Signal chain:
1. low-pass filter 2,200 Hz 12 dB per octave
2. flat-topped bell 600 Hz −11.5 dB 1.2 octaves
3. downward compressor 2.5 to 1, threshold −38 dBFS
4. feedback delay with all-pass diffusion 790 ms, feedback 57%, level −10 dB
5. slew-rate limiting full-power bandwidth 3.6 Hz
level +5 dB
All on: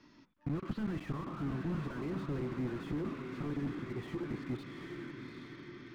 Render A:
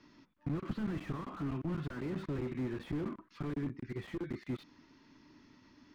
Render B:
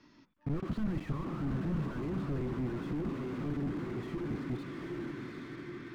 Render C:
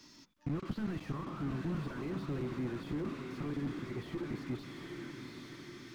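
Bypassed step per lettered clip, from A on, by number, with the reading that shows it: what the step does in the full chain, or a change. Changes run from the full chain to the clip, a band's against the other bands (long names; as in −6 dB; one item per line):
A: 4, change in momentary loudness spread −3 LU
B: 3, average gain reduction 5.0 dB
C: 1, 4 kHz band +3.0 dB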